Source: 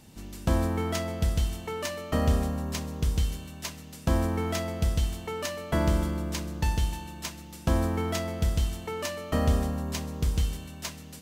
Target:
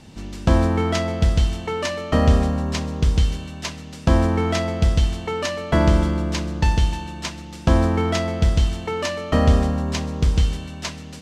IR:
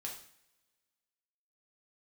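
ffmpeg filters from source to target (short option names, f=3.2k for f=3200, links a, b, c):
-af "lowpass=5.9k,volume=8.5dB"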